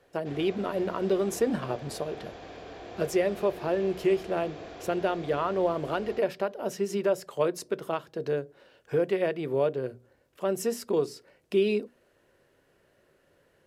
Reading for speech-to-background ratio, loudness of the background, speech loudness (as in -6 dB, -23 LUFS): 14.5 dB, -44.0 LUFS, -29.5 LUFS